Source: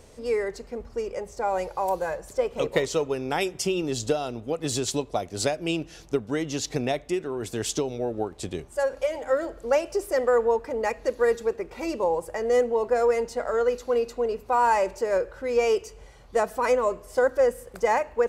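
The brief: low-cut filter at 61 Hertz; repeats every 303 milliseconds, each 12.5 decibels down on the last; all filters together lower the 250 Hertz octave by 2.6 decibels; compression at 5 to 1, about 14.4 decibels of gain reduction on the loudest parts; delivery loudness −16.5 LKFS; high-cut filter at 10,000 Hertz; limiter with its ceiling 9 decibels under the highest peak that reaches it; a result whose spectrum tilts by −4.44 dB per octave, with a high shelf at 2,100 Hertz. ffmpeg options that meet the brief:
ffmpeg -i in.wav -af "highpass=61,lowpass=10000,equalizer=frequency=250:width_type=o:gain=-3.5,highshelf=frequency=2100:gain=-4.5,acompressor=threshold=-35dB:ratio=5,alimiter=level_in=7dB:limit=-24dB:level=0:latency=1,volume=-7dB,aecho=1:1:303|606|909:0.237|0.0569|0.0137,volume=24dB" out.wav

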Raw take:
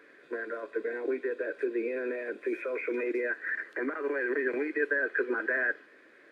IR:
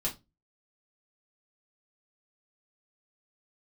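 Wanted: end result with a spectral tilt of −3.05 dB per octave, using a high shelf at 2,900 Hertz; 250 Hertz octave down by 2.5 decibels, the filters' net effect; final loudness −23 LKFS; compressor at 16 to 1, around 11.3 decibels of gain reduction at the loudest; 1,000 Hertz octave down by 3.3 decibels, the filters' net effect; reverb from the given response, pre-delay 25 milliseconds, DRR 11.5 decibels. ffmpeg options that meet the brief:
-filter_complex "[0:a]equalizer=frequency=250:width_type=o:gain=-3.5,equalizer=frequency=1000:width_type=o:gain=-6.5,highshelf=frequency=2900:gain=6.5,acompressor=threshold=-37dB:ratio=16,asplit=2[link_01][link_02];[1:a]atrim=start_sample=2205,adelay=25[link_03];[link_02][link_03]afir=irnorm=-1:irlink=0,volume=-15.5dB[link_04];[link_01][link_04]amix=inputs=2:normalize=0,volume=17.5dB"

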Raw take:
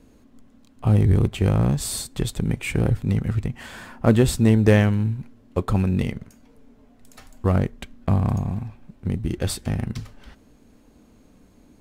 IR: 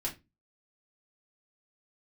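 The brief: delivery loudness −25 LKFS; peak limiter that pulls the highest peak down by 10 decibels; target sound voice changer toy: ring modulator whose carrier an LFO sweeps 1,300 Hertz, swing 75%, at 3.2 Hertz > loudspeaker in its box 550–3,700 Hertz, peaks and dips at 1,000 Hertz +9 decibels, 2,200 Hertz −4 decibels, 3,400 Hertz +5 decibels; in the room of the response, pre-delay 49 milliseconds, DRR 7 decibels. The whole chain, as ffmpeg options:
-filter_complex "[0:a]alimiter=limit=-13.5dB:level=0:latency=1,asplit=2[link_01][link_02];[1:a]atrim=start_sample=2205,adelay=49[link_03];[link_02][link_03]afir=irnorm=-1:irlink=0,volume=-9.5dB[link_04];[link_01][link_04]amix=inputs=2:normalize=0,aeval=exprs='val(0)*sin(2*PI*1300*n/s+1300*0.75/3.2*sin(2*PI*3.2*n/s))':channel_layout=same,highpass=550,equalizer=frequency=1000:width_type=q:width=4:gain=9,equalizer=frequency=2200:width_type=q:width=4:gain=-4,equalizer=frequency=3400:width_type=q:width=4:gain=5,lowpass=frequency=3700:width=0.5412,lowpass=frequency=3700:width=1.3066,volume=1dB"

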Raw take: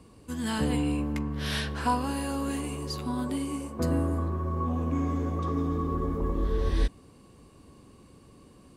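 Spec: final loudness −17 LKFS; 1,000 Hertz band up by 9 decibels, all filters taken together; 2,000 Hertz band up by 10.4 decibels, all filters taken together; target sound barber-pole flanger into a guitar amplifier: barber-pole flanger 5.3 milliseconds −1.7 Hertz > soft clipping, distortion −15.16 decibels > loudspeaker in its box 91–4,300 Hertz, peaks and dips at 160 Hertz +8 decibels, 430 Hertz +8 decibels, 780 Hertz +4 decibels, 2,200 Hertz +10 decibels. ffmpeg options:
ffmpeg -i in.wav -filter_complex "[0:a]equalizer=frequency=1000:width_type=o:gain=7,equalizer=frequency=2000:width_type=o:gain=6,asplit=2[link_01][link_02];[link_02]adelay=5.3,afreqshift=-1.7[link_03];[link_01][link_03]amix=inputs=2:normalize=1,asoftclip=threshold=-19.5dB,highpass=91,equalizer=frequency=160:width_type=q:width=4:gain=8,equalizer=frequency=430:width_type=q:width=4:gain=8,equalizer=frequency=780:width_type=q:width=4:gain=4,equalizer=frequency=2200:width_type=q:width=4:gain=10,lowpass=frequency=4300:width=0.5412,lowpass=frequency=4300:width=1.3066,volume=12.5dB" out.wav

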